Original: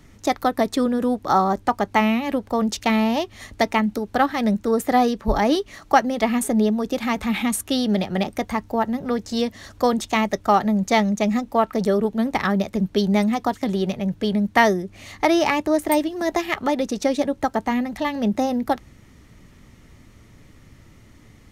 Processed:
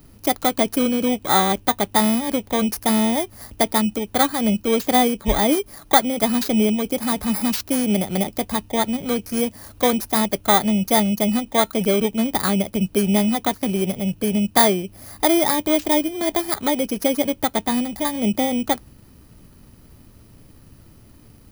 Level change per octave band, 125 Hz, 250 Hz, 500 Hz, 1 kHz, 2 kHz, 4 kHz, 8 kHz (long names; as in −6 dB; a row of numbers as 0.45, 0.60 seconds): +1.0, +1.0, +0.5, −1.0, −1.0, +5.0, +8.0 decibels